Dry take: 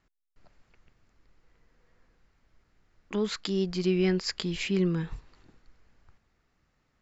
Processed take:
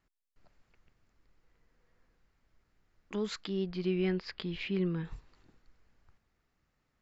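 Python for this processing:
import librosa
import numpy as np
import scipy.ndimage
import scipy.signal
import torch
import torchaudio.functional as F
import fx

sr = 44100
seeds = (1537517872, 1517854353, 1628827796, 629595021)

y = fx.lowpass(x, sr, hz=4000.0, slope=24, at=(3.45, 5.05))
y = y * 10.0 ** (-5.5 / 20.0)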